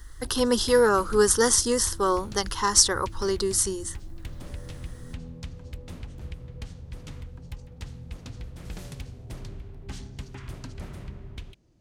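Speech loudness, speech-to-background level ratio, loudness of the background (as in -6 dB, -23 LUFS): -22.5 LUFS, 19.0 dB, -41.5 LUFS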